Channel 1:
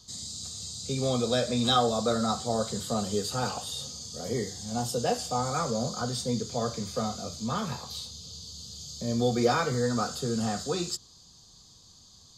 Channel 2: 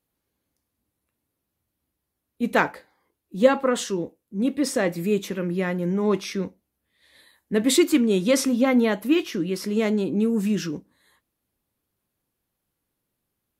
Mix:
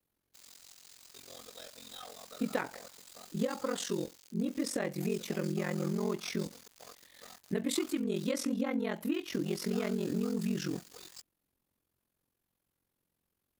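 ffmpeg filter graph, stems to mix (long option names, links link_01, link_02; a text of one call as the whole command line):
ffmpeg -i stem1.wav -i stem2.wav -filter_complex "[0:a]highpass=frequency=1400:poles=1,asoftclip=type=tanh:threshold=-31.5dB,acrusher=bits=5:mix=0:aa=0.000001,adelay=250,volume=-12dB[link_01];[1:a]acompressor=threshold=-25dB:ratio=12,volume=-1.5dB[link_02];[link_01][link_02]amix=inputs=2:normalize=0,aeval=exprs='val(0)*sin(2*PI*22*n/s)':channel_layout=same" out.wav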